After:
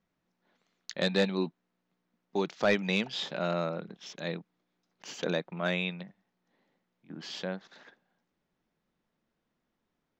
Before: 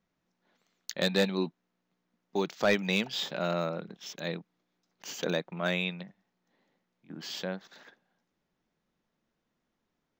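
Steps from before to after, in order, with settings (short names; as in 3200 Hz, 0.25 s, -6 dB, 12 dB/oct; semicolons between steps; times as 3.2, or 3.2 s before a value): air absorption 63 m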